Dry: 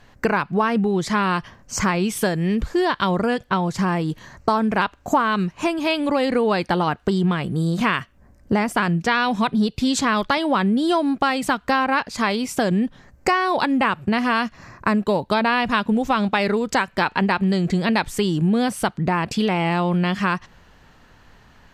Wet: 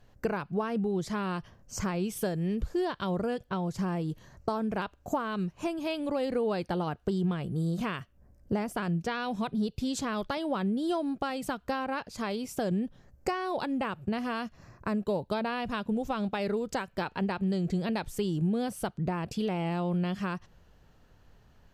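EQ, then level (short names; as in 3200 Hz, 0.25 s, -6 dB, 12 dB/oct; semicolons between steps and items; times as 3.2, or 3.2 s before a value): ten-band EQ 250 Hz -5 dB, 1000 Hz -7 dB, 2000 Hz -9 dB, 4000 Hz -5 dB, 8000 Hz -5 dB; -6.0 dB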